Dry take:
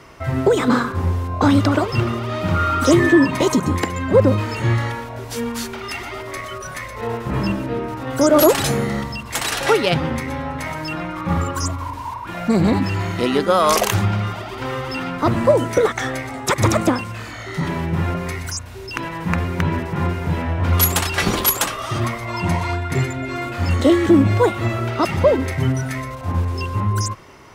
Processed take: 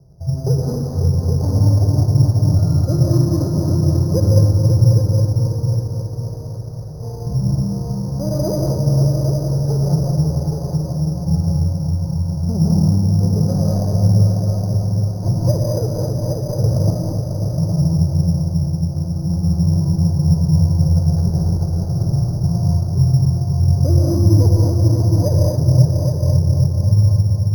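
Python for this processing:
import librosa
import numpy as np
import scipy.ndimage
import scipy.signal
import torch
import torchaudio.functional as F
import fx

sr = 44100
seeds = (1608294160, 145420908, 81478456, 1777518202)

p1 = scipy.signal.medfilt(x, 41)
p2 = fx.ladder_lowpass(p1, sr, hz=950.0, resonance_pct=25)
p3 = fx.low_shelf_res(p2, sr, hz=200.0, db=8.5, q=3.0)
p4 = p3 + fx.echo_heads(p3, sr, ms=272, heads='all three', feedback_pct=49, wet_db=-8.0, dry=0)
p5 = fx.rev_gated(p4, sr, seeds[0], gate_ms=240, shape='rising', drr_db=-1.5)
p6 = np.repeat(scipy.signal.resample_poly(p5, 1, 8), 8)[:len(p5)]
y = p6 * librosa.db_to_amplitude(-3.5)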